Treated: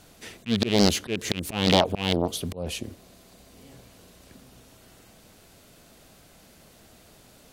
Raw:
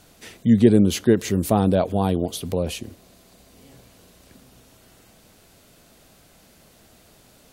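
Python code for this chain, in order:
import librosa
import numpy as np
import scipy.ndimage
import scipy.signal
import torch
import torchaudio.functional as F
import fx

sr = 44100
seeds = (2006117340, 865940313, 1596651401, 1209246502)

y = fx.rattle_buzz(x, sr, strikes_db=-21.0, level_db=-7.0)
y = fx.auto_swell(y, sr, attack_ms=229.0)
y = fx.doppler_dist(y, sr, depth_ms=0.77)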